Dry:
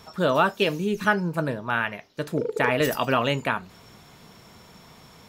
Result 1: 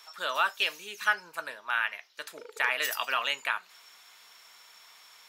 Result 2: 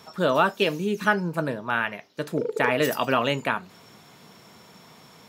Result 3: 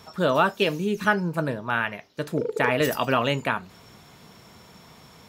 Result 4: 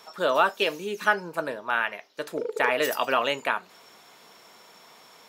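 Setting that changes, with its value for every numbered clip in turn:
high-pass filter, corner frequency: 1,400, 140, 43, 440 Hertz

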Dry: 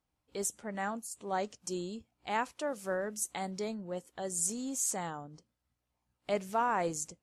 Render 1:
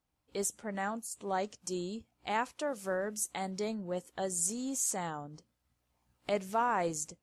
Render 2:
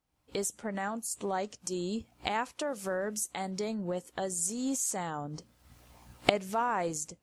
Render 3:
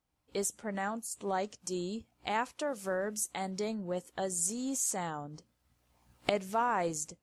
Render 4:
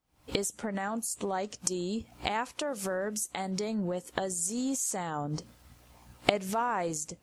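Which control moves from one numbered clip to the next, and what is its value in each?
camcorder AGC, rising by: 5.8, 36, 14, 91 dB per second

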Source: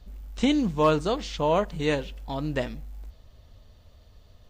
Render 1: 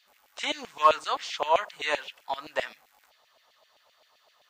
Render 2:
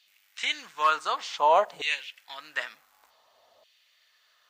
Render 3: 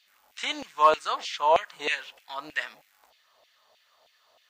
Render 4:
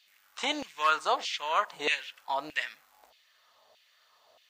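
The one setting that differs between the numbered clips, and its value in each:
auto-filter high-pass, speed: 7.7, 0.55, 3.2, 1.6 Hertz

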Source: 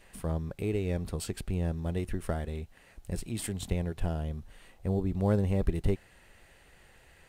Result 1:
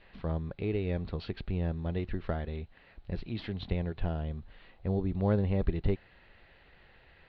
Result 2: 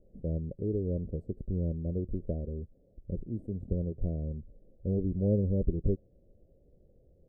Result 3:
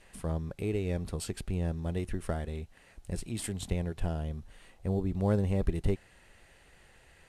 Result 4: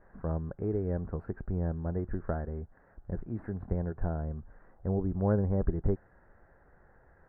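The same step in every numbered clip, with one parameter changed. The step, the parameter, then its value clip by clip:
elliptic low-pass filter, frequency: 4,200, 560, 12,000, 1,600 Hertz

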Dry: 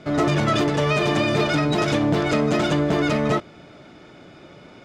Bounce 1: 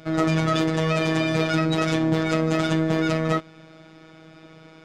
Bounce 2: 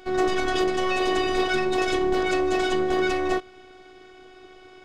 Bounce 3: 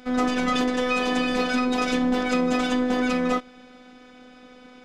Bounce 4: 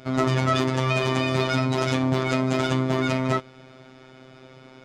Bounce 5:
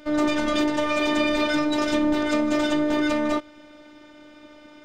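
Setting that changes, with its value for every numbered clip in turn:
phases set to zero, frequency: 160, 370, 250, 130, 300 Hertz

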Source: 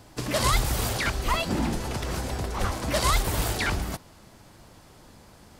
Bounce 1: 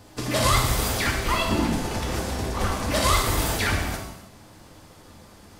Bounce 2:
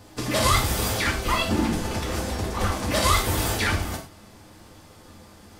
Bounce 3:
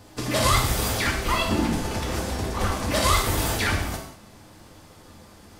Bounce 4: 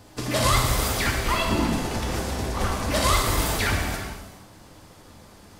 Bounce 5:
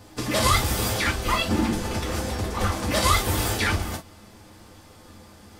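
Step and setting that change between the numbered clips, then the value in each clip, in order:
reverb whose tail is shaped and stops, gate: 350, 140, 230, 520, 80 milliseconds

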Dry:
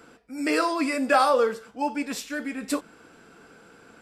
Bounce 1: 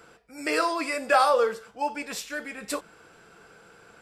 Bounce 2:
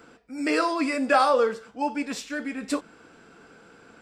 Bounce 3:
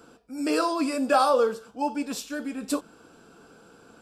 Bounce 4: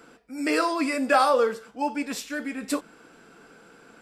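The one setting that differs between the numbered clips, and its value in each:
parametric band, centre frequency: 260, 12,000, 2,000, 86 Hertz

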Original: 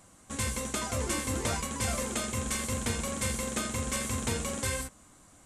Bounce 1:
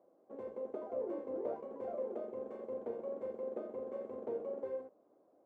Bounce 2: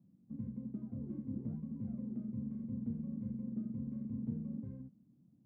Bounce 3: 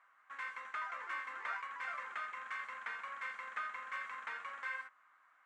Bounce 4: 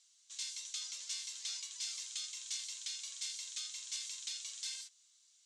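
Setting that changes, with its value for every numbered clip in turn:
flat-topped band-pass, frequency: 480, 180, 1,500, 4,700 Hertz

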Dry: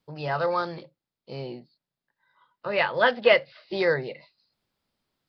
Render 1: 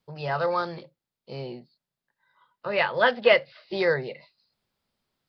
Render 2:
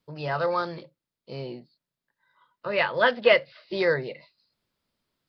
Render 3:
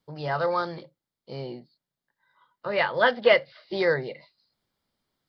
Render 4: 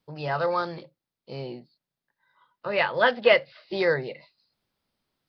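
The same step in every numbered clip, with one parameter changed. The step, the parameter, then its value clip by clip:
notch filter, centre frequency: 300, 790, 2,600, 7,200 Hertz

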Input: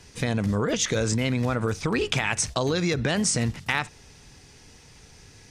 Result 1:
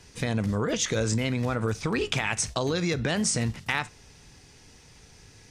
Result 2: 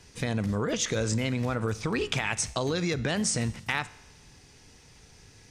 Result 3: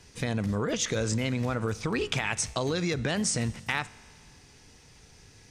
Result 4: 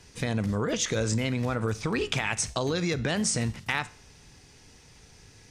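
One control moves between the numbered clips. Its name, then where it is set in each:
tuned comb filter, decay: 0.22, 1, 2.2, 0.49 seconds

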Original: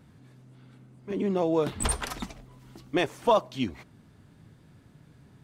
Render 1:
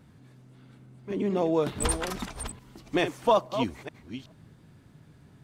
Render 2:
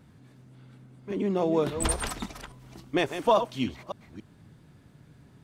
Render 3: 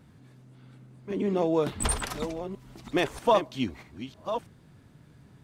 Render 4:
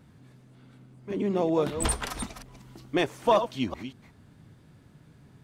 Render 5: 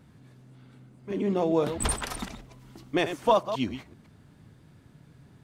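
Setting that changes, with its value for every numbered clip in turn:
delay that plays each chunk backwards, delay time: 432, 280, 638, 187, 127 milliseconds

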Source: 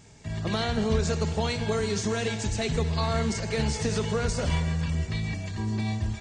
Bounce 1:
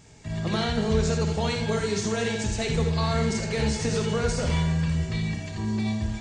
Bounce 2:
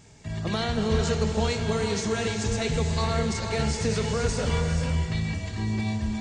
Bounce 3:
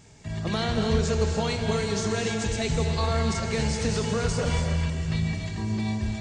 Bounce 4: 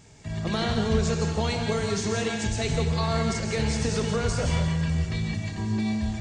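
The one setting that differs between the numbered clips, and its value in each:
reverb whose tail is shaped and stops, gate: 100, 510, 320, 200 milliseconds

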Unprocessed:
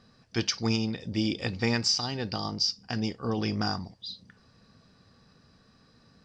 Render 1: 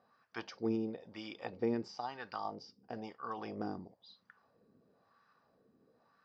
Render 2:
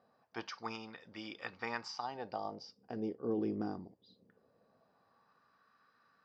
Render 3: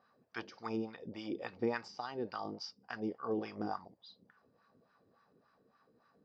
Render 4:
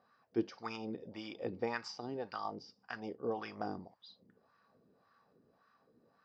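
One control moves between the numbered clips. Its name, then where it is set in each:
LFO wah, speed: 1, 0.21, 3.5, 1.8 Hertz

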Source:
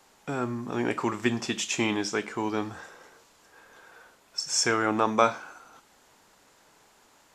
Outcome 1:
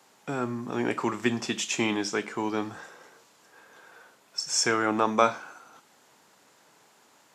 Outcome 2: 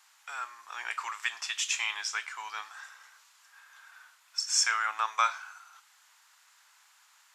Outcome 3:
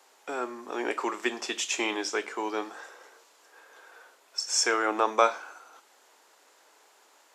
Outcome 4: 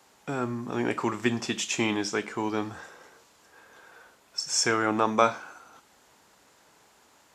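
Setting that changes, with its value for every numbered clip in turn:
high-pass filter, corner frequency: 110, 1,100, 350, 42 Hertz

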